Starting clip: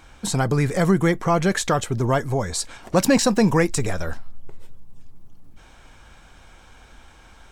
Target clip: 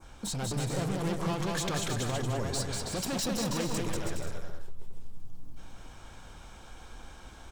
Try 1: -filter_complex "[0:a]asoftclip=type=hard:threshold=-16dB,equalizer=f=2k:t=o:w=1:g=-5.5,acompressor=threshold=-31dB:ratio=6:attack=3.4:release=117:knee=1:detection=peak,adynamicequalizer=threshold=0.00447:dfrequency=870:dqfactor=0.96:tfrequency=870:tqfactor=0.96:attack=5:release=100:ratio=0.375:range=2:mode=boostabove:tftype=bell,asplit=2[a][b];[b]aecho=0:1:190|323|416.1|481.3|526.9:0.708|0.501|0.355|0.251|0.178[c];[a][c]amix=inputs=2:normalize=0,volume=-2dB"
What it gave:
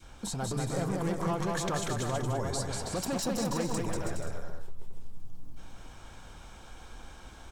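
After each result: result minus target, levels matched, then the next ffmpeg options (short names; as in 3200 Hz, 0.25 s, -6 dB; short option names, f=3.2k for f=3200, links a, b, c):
hard clip: distortion -6 dB; 4000 Hz band -3.5 dB
-filter_complex "[0:a]asoftclip=type=hard:threshold=-22.5dB,equalizer=f=2k:t=o:w=1:g=-5.5,acompressor=threshold=-31dB:ratio=6:attack=3.4:release=117:knee=1:detection=peak,adynamicequalizer=threshold=0.00447:dfrequency=870:dqfactor=0.96:tfrequency=870:tqfactor=0.96:attack=5:release=100:ratio=0.375:range=2:mode=boostabove:tftype=bell,asplit=2[a][b];[b]aecho=0:1:190|323|416.1|481.3|526.9:0.708|0.501|0.355|0.251|0.178[c];[a][c]amix=inputs=2:normalize=0,volume=-2dB"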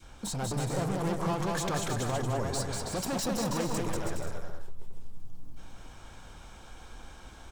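4000 Hz band -3.0 dB
-filter_complex "[0:a]asoftclip=type=hard:threshold=-22.5dB,equalizer=f=2k:t=o:w=1:g=-5.5,acompressor=threshold=-31dB:ratio=6:attack=3.4:release=117:knee=1:detection=peak,adynamicequalizer=threshold=0.00447:dfrequency=3300:dqfactor=0.96:tfrequency=3300:tqfactor=0.96:attack=5:release=100:ratio=0.375:range=2:mode=boostabove:tftype=bell,asplit=2[a][b];[b]aecho=0:1:190|323|416.1|481.3|526.9:0.708|0.501|0.355|0.251|0.178[c];[a][c]amix=inputs=2:normalize=0,volume=-2dB"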